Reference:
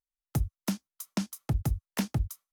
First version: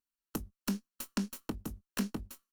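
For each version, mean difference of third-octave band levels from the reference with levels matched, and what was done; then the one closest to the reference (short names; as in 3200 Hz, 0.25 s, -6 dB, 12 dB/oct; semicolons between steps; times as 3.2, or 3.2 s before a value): 5.5 dB: minimum comb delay 0.71 ms; doubler 20 ms -7.5 dB; compressor, threshold -34 dBFS, peak gain reduction 11 dB; resonant low shelf 170 Hz -8 dB, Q 3; gain +1.5 dB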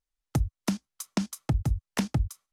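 2.5 dB: LPF 9300 Hz 12 dB/oct; in parallel at -2 dB: level quantiser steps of 23 dB; on the sum: low shelf 140 Hz +8.5 dB; compressor 4:1, threshold -27 dBFS, peak gain reduction 10 dB; gain +3.5 dB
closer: second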